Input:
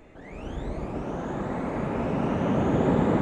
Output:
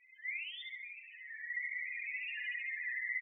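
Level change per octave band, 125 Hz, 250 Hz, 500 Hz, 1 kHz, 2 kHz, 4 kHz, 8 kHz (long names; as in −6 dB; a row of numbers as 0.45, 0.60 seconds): below −40 dB, below −40 dB, below −40 dB, below −40 dB, +4.5 dB, −0.5 dB, can't be measured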